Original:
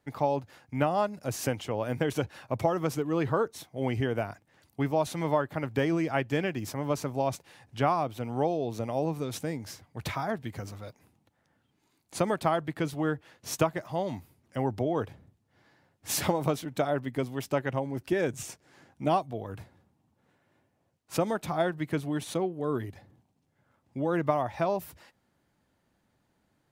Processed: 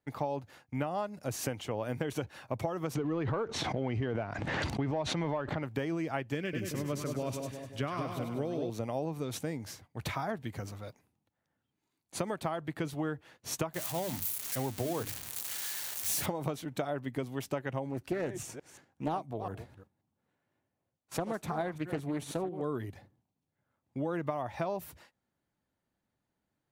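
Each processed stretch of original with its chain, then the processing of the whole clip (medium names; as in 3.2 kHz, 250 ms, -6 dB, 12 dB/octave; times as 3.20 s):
2.95–5.63 s: waveshaping leveller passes 1 + distance through air 140 m + swell ahead of each attack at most 28 dB/s
6.35–8.70 s: peaking EQ 820 Hz -14.5 dB 0.56 oct + two-band feedback delay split 890 Hz, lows 180 ms, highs 100 ms, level -5.5 dB
13.74–16.26 s: zero-crossing glitches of -22.5 dBFS + bass shelf 65 Hz +9.5 dB + hum notches 50/100/150/200/250/300 Hz
17.89–22.62 s: chunks repeated in reverse 177 ms, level -13 dB + dynamic bell 3.4 kHz, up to -4 dB, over -50 dBFS, Q 0.88 + loudspeaker Doppler distortion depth 0.47 ms
whole clip: gate -54 dBFS, range -10 dB; band-stop 5.1 kHz, Q 25; compression, threshold -28 dBFS; trim -1.5 dB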